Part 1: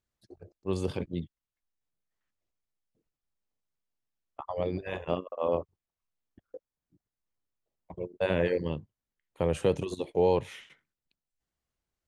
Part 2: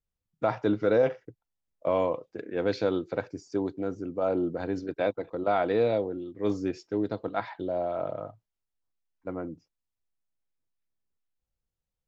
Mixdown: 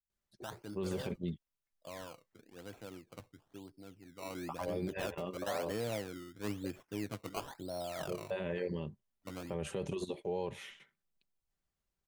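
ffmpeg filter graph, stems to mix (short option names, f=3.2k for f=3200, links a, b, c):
-filter_complex "[0:a]aecho=1:1:5.1:0.41,adelay=100,volume=-3.5dB[a];[1:a]lowpass=f=3.1k:p=1,equalizer=f=440:w=0.87:g=-10,acrusher=samples=18:mix=1:aa=0.000001:lfo=1:lforange=18:lforate=1,volume=-4dB,afade=t=in:st=4.12:d=0.63:silence=0.298538[b];[a][b]amix=inputs=2:normalize=0,alimiter=level_in=3.5dB:limit=-24dB:level=0:latency=1:release=49,volume=-3.5dB"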